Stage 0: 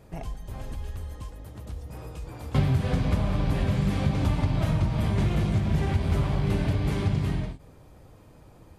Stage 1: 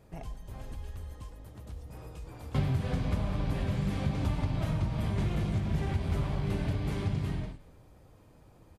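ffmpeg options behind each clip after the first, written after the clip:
-filter_complex "[0:a]asplit=6[a][b][c][d][e][f];[b]adelay=100,afreqshift=-37,volume=-18dB[g];[c]adelay=200,afreqshift=-74,volume=-23.2dB[h];[d]adelay=300,afreqshift=-111,volume=-28.4dB[i];[e]adelay=400,afreqshift=-148,volume=-33.6dB[j];[f]adelay=500,afreqshift=-185,volume=-38.8dB[k];[a][g][h][i][j][k]amix=inputs=6:normalize=0,volume=-6dB"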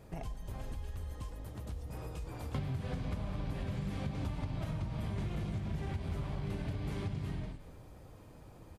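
-af "acompressor=threshold=-41dB:ratio=3,volume=3.5dB"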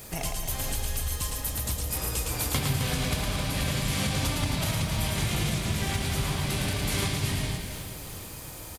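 -filter_complex "[0:a]asplit=2[a][b];[b]aecho=0:1:110|264|479.6|781.4|1204:0.631|0.398|0.251|0.158|0.1[c];[a][c]amix=inputs=2:normalize=0,crystalizer=i=9.5:c=0,bandreject=f=50.14:t=h:w=4,bandreject=f=100.28:t=h:w=4,bandreject=f=150.42:t=h:w=4,bandreject=f=200.56:t=h:w=4,bandreject=f=250.7:t=h:w=4,bandreject=f=300.84:t=h:w=4,bandreject=f=350.98:t=h:w=4,bandreject=f=401.12:t=h:w=4,bandreject=f=451.26:t=h:w=4,bandreject=f=501.4:t=h:w=4,bandreject=f=551.54:t=h:w=4,bandreject=f=601.68:t=h:w=4,bandreject=f=651.82:t=h:w=4,bandreject=f=701.96:t=h:w=4,bandreject=f=752.1:t=h:w=4,bandreject=f=802.24:t=h:w=4,bandreject=f=852.38:t=h:w=4,bandreject=f=902.52:t=h:w=4,bandreject=f=952.66:t=h:w=4,bandreject=f=1.0028k:t=h:w=4,bandreject=f=1.05294k:t=h:w=4,bandreject=f=1.10308k:t=h:w=4,bandreject=f=1.15322k:t=h:w=4,bandreject=f=1.20336k:t=h:w=4,bandreject=f=1.2535k:t=h:w=4,bandreject=f=1.30364k:t=h:w=4,bandreject=f=1.35378k:t=h:w=4,bandreject=f=1.40392k:t=h:w=4,bandreject=f=1.45406k:t=h:w=4,bandreject=f=1.5042k:t=h:w=4,bandreject=f=1.55434k:t=h:w=4,bandreject=f=1.60448k:t=h:w=4,bandreject=f=1.65462k:t=h:w=4,bandreject=f=1.70476k:t=h:w=4,bandreject=f=1.7549k:t=h:w=4,bandreject=f=1.80504k:t=h:w=4,bandreject=f=1.85518k:t=h:w=4,volume=6.5dB"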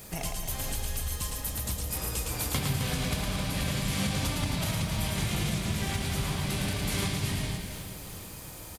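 -af "equalizer=f=190:w=6.6:g=5.5,volume=-2.5dB"

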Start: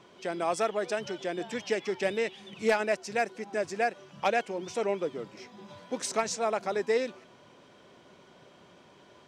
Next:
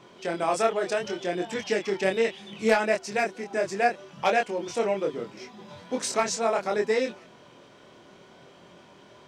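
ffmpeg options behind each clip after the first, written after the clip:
-af "flanger=delay=22.5:depth=4:speed=0.7,volume=7dB"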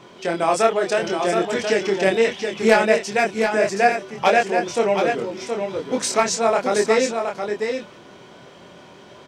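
-af "aecho=1:1:721:0.501,volume=6.5dB"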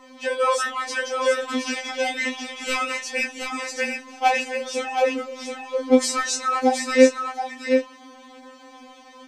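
-af "afftfilt=real='re*3.46*eq(mod(b,12),0)':imag='im*3.46*eq(mod(b,12),0)':win_size=2048:overlap=0.75,volume=2dB"

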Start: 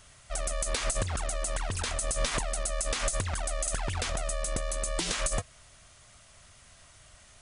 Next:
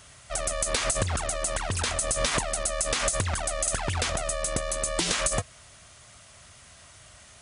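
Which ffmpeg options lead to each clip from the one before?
-af "highpass=59,volume=5dB"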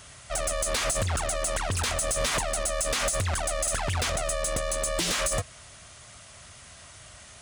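-af "asoftclip=type=tanh:threshold=-24.5dB,volume=3dB"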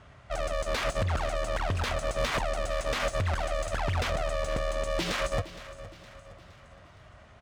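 -af "adynamicsmooth=sensitivity=2.5:basefreq=1.7k,aecho=1:1:465|930|1395|1860:0.168|0.0806|0.0387|0.0186"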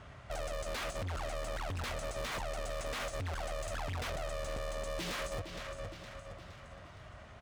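-af "acompressor=threshold=-32dB:ratio=6,asoftclip=type=hard:threshold=-37dB,volume=1dB"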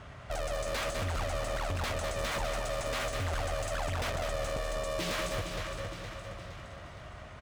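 -af "aecho=1:1:201|402|603|804|1005|1206:0.473|0.237|0.118|0.0591|0.0296|0.0148,volume=4dB"

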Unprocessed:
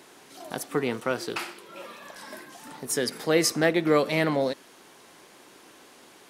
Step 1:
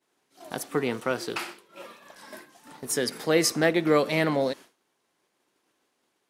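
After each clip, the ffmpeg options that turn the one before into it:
-af "agate=range=-33dB:threshold=-38dB:ratio=3:detection=peak"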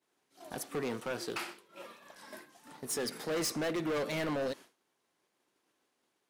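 -af "asoftclip=type=hard:threshold=-25.5dB,volume=-5dB"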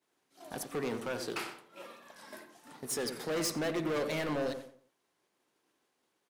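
-filter_complex "[0:a]asplit=2[a][b];[b]adelay=90,lowpass=f=1.3k:p=1,volume=-7.5dB,asplit=2[c][d];[d]adelay=90,lowpass=f=1.3k:p=1,volume=0.36,asplit=2[e][f];[f]adelay=90,lowpass=f=1.3k:p=1,volume=0.36,asplit=2[g][h];[h]adelay=90,lowpass=f=1.3k:p=1,volume=0.36[i];[a][c][e][g][i]amix=inputs=5:normalize=0"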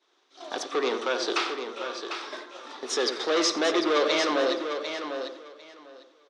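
-af "highpass=f=320:w=0.5412,highpass=f=320:w=1.3066,equalizer=f=360:t=q:w=4:g=3,equalizer=f=1.2k:t=q:w=4:g=6,equalizer=f=3.6k:t=q:w=4:g=10,equalizer=f=5.8k:t=q:w=4:g=5,lowpass=f=6k:w=0.5412,lowpass=f=6k:w=1.3066,aecho=1:1:749|1498|2247:0.398|0.0677|0.0115,volume=8.5dB"

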